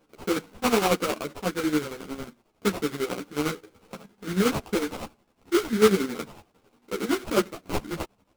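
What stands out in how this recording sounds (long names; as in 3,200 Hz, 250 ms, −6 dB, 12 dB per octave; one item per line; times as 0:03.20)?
phaser sweep stages 2, 0.34 Hz, lowest notch 640–4,100 Hz
aliases and images of a low sample rate 1,800 Hz, jitter 20%
chopped level 11 Hz, depth 60%, duty 50%
a shimmering, thickened sound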